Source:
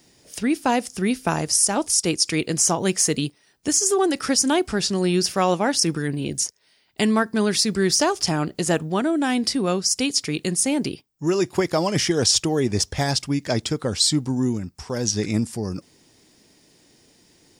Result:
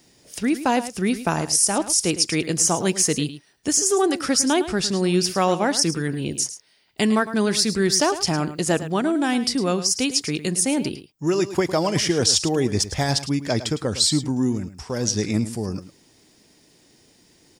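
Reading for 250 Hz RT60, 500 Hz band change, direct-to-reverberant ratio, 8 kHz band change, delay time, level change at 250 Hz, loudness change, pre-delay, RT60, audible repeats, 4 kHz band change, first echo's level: no reverb, +0.5 dB, no reverb, 0.0 dB, 107 ms, 0.0 dB, 0.0 dB, no reverb, no reverb, 1, 0.0 dB, -13.0 dB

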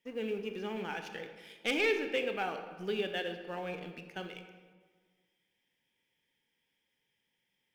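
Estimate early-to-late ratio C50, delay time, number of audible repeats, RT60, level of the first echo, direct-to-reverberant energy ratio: 8.0 dB, no echo, no echo, 1.6 s, no echo, 6.5 dB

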